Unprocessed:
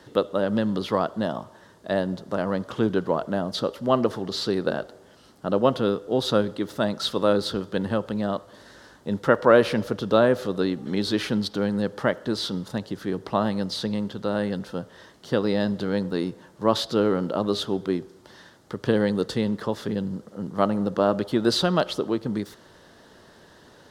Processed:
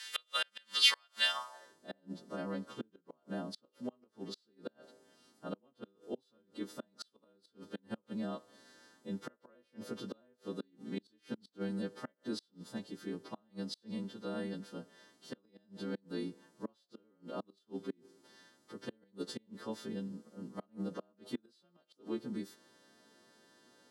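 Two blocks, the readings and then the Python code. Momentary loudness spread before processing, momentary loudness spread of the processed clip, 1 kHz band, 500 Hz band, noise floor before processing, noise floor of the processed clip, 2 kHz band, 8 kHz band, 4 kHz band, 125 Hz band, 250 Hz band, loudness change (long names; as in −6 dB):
9 LU, 15 LU, −20.0 dB, −22.5 dB, −53 dBFS, −76 dBFS, −10.5 dB, −8.5 dB, −6.0 dB, −19.5 dB, −17.0 dB, −15.0 dB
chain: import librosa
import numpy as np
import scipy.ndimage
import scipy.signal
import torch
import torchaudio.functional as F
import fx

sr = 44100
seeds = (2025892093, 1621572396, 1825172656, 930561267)

y = fx.freq_snap(x, sr, grid_st=2)
y = fx.gate_flip(y, sr, shuts_db=-14.0, range_db=-35)
y = scipy.signal.lfilter([1.0, -0.97], [1.0], y)
y = fx.filter_sweep_bandpass(y, sr, from_hz=2400.0, to_hz=240.0, start_s=1.29, end_s=1.79, q=1.9)
y = F.gain(torch.from_numpy(y), 18.0).numpy()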